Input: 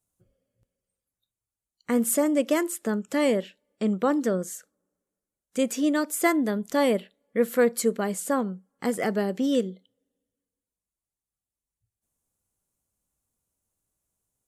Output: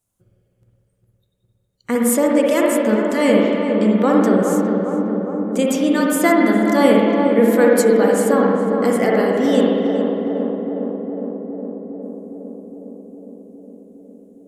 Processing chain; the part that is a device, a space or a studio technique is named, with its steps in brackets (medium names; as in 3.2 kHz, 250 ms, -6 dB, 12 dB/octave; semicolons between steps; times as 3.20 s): dub delay into a spring reverb (filtered feedback delay 410 ms, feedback 79%, low-pass 1.3 kHz, level -4.5 dB; spring tank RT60 1.7 s, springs 51/60 ms, chirp 50 ms, DRR -1.5 dB); trim +5 dB